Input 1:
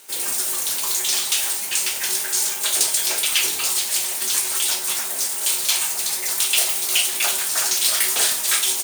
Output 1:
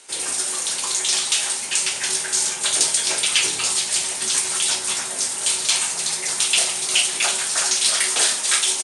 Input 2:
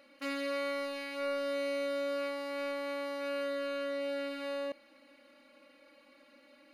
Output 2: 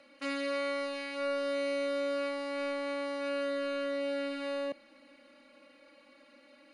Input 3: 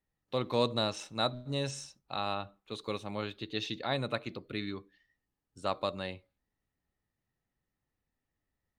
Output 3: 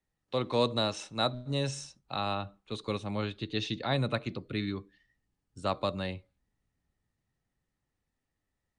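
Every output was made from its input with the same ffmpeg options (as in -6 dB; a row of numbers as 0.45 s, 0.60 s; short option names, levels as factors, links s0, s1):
-filter_complex "[0:a]acrossover=split=220|680|2300[s0][s1][s2][s3];[s0]dynaudnorm=f=340:g=11:m=2.11[s4];[s4][s1][s2][s3]amix=inputs=4:normalize=0,aresample=22050,aresample=44100,volume=1.19"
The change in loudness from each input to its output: 0.0 LU, +2.0 LU, +2.0 LU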